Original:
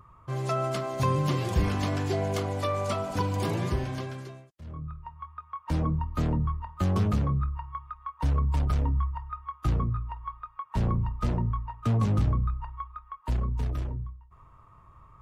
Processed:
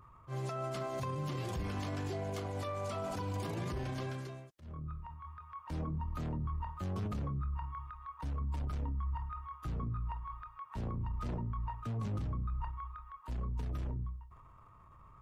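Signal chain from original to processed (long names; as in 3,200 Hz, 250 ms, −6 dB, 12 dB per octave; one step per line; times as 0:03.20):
transient designer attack −9 dB, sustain +6 dB
brickwall limiter −26.5 dBFS, peak gain reduction 11 dB
level −4 dB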